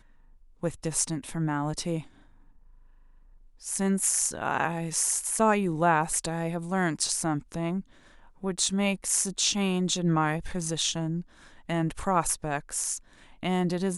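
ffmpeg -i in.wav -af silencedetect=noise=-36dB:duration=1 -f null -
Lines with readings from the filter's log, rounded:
silence_start: 2.01
silence_end: 3.65 | silence_duration: 1.64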